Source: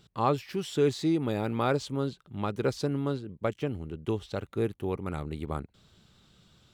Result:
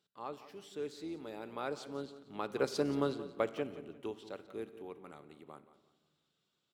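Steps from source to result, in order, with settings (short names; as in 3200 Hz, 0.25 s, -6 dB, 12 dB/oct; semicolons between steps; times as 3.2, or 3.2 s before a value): octaver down 2 oct, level -5 dB; Doppler pass-by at 3.05, 6 m/s, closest 2.4 m; HPF 290 Hz 12 dB/oct; feedback echo 0.177 s, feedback 31%, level -15 dB; shoebox room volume 1300 m³, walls mixed, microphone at 0.36 m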